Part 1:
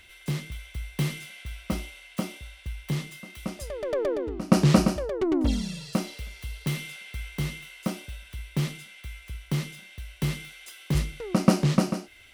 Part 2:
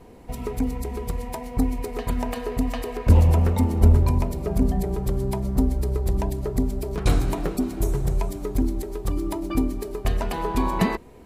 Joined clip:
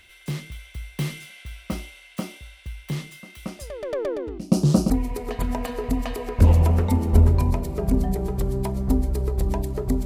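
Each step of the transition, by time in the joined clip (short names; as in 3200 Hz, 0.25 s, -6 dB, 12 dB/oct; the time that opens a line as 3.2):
part 1
4.38–4.9 phaser stages 2, 0.73 Hz, lowest notch 540–2000 Hz
4.9 switch to part 2 from 1.58 s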